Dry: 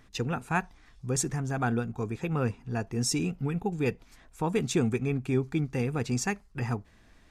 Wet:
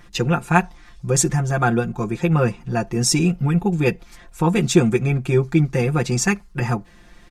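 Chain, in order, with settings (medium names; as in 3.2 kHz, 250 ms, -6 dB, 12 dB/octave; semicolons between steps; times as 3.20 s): comb 5.7 ms, depth 90%; trim +8 dB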